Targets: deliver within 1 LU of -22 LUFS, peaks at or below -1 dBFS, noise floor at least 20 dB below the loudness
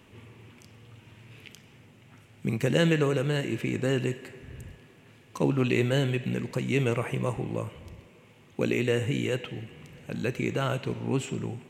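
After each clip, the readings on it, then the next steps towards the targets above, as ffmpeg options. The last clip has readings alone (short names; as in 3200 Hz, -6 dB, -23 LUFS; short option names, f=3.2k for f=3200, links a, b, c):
loudness -28.5 LUFS; peak -11.0 dBFS; loudness target -22.0 LUFS
-> -af "volume=6.5dB"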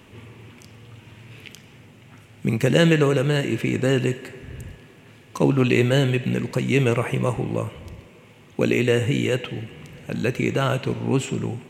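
loudness -22.0 LUFS; peak -4.5 dBFS; noise floor -49 dBFS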